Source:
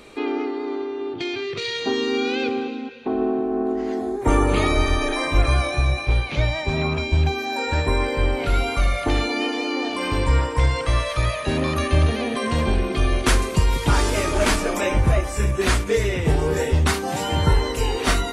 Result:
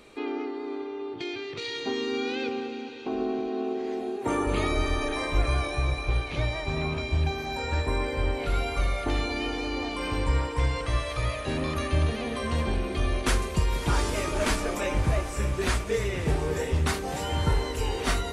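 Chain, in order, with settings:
0:03.48–0:04.47: high-pass filter 140 Hz 12 dB per octave
on a send: feedback delay with all-pass diffusion 613 ms, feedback 69%, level −13.5 dB
on the sum: level −7 dB

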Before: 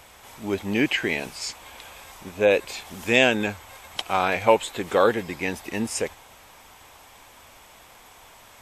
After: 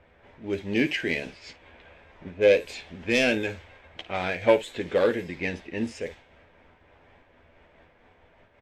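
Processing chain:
phase distortion by the signal itself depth 0.1 ms
flat-topped bell 1,000 Hz −8.5 dB 1.1 octaves
notch filter 1,100 Hz, Q 27
ambience of single reflections 12 ms −7 dB, 55 ms −14 dB
low-pass that shuts in the quiet parts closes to 1,500 Hz, open at −19 dBFS
high-shelf EQ 6,600 Hz −10.5 dB
amplitude modulation by smooth noise, depth 60%

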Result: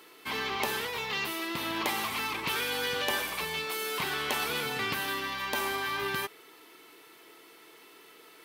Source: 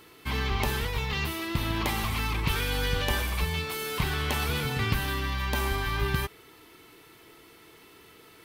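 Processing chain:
high-pass filter 320 Hz 12 dB per octave

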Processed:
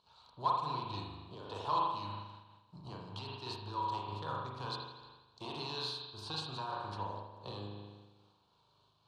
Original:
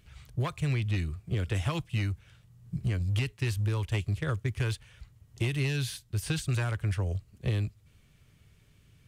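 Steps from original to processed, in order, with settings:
gain on one half-wave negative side −3 dB
pair of resonant band-passes 2,000 Hz, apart 2.1 octaves
high-shelf EQ 3,200 Hz −10 dB
spring reverb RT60 1.3 s, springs 39 ms, chirp 45 ms, DRR −2.5 dB
amplitude modulation by smooth noise, depth 50%
level +14 dB

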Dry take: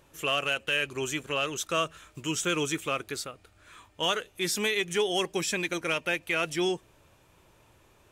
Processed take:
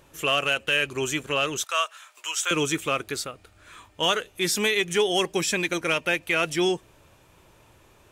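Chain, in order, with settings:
0:01.64–0:02.51: high-pass filter 720 Hz 24 dB per octave
level +4.5 dB

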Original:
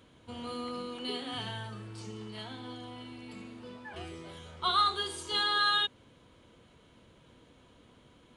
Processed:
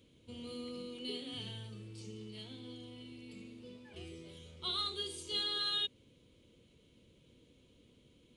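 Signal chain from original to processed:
flat-topped bell 1,100 Hz −13.5 dB
level −4.5 dB

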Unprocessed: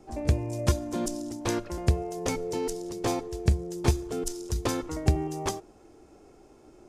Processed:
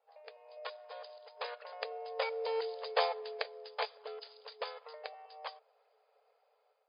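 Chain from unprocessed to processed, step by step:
source passing by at 0:02.87, 10 m/s, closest 4.3 metres
brick-wall band-pass 420–5,000 Hz
in parallel at −3 dB: downward compressor, threshold −50 dBFS, peak gain reduction 20.5 dB
on the sum: harmonic and percussive parts rebalanced harmonic −6 dB
automatic gain control gain up to 7 dB
level −2.5 dB

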